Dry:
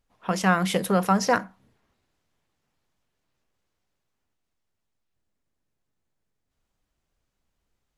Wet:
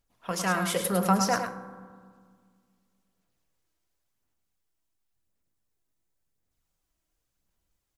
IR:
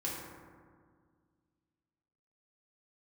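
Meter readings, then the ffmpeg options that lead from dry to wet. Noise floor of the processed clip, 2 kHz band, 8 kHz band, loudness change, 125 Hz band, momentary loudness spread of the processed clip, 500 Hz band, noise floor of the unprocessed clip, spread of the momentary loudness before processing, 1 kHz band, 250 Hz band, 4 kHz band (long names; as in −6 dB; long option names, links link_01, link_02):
−80 dBFS, −4.0 dB, +2.5 dB, −3.5 dB, −4.0 dB, 15 LU, −4.0 dB, −80 dBFS, 4 LU, −3.0 dB, −4.0 dB, −1.0 dB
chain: -filter_complex "[0:a]aphaser=in_gain=1:out_gain=1:delay=3.2:decay=0.37:speed=0.93:type=sinusoidal,highshelf=frequency=6000:gain=12,aecho=1:1:105:0.447,asplit=2[link_01][link_02];[1:a]atrim=start_sample=2205[link_03];[link_02][link_03]afir=irnorm=-1:irlink=0,volume=-11dB[link_04];[link_01][link_04]amix=inputs=2:normalize=0,volume=-8dB"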